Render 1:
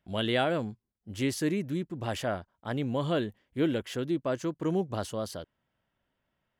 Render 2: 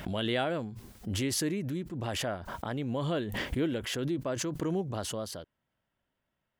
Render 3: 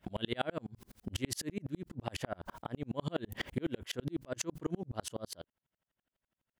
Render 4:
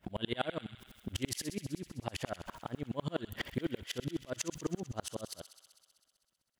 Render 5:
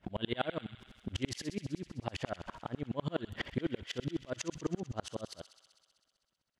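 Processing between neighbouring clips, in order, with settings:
swell ahead of each attack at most 26 dB/s; trim -3.5 dB
sawtooth tremolo in dB swelling 12 Hz, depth 39 dB; trim +3 dB
feedback echo behind a high-pass 64 ms, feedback 81%, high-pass 2 kHz, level -11.5 dB
distance through air 80 m; trim +1 dB

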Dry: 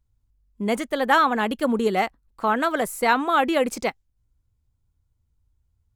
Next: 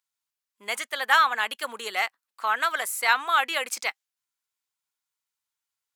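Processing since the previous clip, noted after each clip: high-pass 1.4 kHz 12 dB/octave; trim +3.5 dB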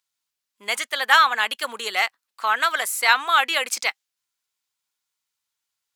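peaking EQ 4.3 kHz +4 dB 1.8 oct; trim +3 dB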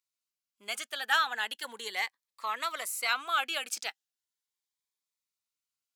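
Shepard-style phaser rising 0.37 Hz; trim -9 dB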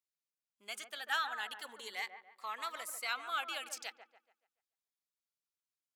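feedback echo behind a low-pass 143 ms, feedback 37%, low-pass 1.4 kHz, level -7.5 dB; trim -8 dB

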